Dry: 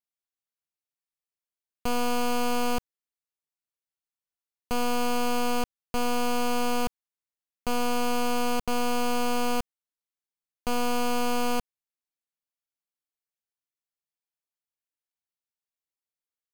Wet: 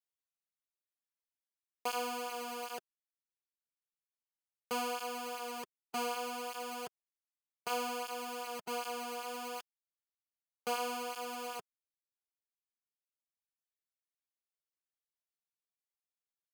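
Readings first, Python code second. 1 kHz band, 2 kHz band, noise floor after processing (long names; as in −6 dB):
−9.5 dB, −9.5 dB, below −85 dBFS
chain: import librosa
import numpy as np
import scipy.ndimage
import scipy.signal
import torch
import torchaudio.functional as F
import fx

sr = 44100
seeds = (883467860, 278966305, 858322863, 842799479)

y = fx.dereverb_blind(x, sr, rt60_s=2.0)
y = scipy.signal.sosfilt(scipy.signal.butter(2, 390.0, 'highpass', fs=sr, output='sos'), y)
y = fx.flanger_cancel(y, sr, hz=1.3, depth_ms=4.0)
y = y * librosa.db_to_amplitude(-1.5)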